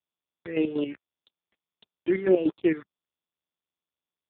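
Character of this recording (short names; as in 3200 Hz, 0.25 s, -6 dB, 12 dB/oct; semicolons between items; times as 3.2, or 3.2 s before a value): a quantiser's noise floor 6-bit, dither none; chopped level 5.3 Hz, depth 65%, duty 45%; phasing stages 6, 1.7 Hz, lowest notch 730–2300 Hz; AMR-NB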